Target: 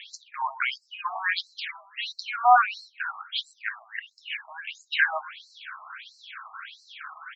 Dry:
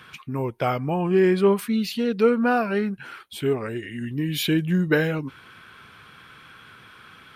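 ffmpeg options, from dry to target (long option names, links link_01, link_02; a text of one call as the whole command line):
ffmpeg -i in.wav -filter_complex "[0:a]asplit=2[link_01][link_02];[link_02]adelay=123,lowpass=frequency=1000:poles=1,volume=-13.5dB,asplit=2[link_03][link_04];[link_04]adelay=123,lowpass=frequency=1000:poles=1,volume=0.45,asplit=2[link_05][link_06];[link_06]adelay=123,lowpass=frequency=1000:poles=1,volume=0.45,asplit=2[link_07][link_08];[link_08]adelay=123,lowpass=frequency=1000:poles=1,volume=0.45[link_09];[link_03][link_05][link_07][link_09]amix=inputs=4:normalize=0[link_10];[link_01][link_10]amix=inputs=2:normalize=0,acontrast=38,afftfilt=real='re*between(b*sr/1024,890*pow(5800/890,0.5+0.5*sin(2*PI*1.5*pts/sr))/1.41,890*pow(5800/890,0.5+0.5*sin(2*PI*1.5*pts/sr))*1.41)':imag='im*between(b*sr/1024,890*pow(5800/890,0.5+0.5*sin(2*PI*1.5*pts/sr))/1.41,890*pow(5800/890,0.5+0.5*sin(2*PI*1.5*pts/sr))*1.41)':win_size=1024:overlap=0.75,volume=5dB" out.wav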